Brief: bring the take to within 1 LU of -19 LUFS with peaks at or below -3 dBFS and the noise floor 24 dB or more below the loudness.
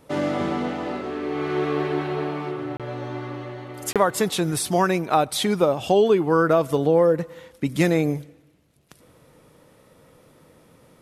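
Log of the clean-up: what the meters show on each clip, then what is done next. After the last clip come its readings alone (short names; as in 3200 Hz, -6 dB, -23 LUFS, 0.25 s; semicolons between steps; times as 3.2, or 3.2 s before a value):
dropouts 2; longest dropout 27 ms; loudness -23.0 LUFS; peak -5.5 dBFS; loudness target -19.0 LUFS
-> interpolate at 2.77/3.93, 27 ms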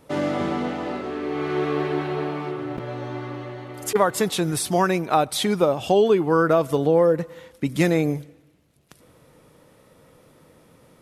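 dropouts 0; loudness -23.0 LUFS; peak -5.5 dBFS; loudness target -19.0 LUFS
-> gain +4 dB; limiter -3 dBFS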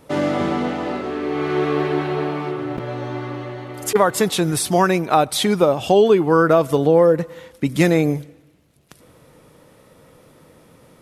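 loudness -19.0 LUFS; peak -3.0 dBFS; noise floor -52 dBFS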